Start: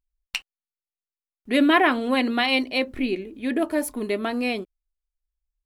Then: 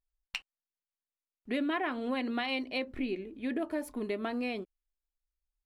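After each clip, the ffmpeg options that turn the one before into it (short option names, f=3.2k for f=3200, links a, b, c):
-af "lowpass=f=3.9k:p=1,acompressor=threshold=-24dB:ratio=4,volume=-6dB"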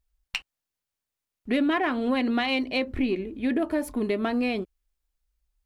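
-filter_complex "[0:a]equalizer=f=66:t=o:w=2.3:g=9,asplit=2[a][b];[b]asoftclip=type=tanh:threshold=-31dB,volume=-11.5dB[c];[a][c]amix=inputs=2:normalize=0,volume=5.5dB"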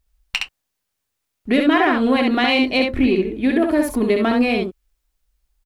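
-af "aecho=1:1:27|66:0.158|0.668,volume=7.5dB"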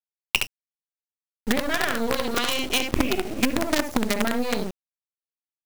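-af "afftfilt=real='re*pow(10,15/40*sin(2*PI*(0.65*log(max(b,1)*sr/1024/100)/log(2)-(-0.37)*(pts-256)/sr)))':imag='im*pow(10,15/40*sin(2*PI*(0.65*log(max(b,1)*sr/1024/100)/log(2)-(-0.37)*(pts-256)/sr)))':win_size=1024:overlap=0.75,acompressor=threshold=-22dB:ratio=8,acrusher=bits=4:dc=4:mix=0:aa=0.000001,volume=3dB"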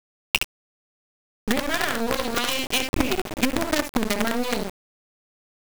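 -af "aeval=exprs='val(0)*gte(abs(val(0)),0.0668)':c=same"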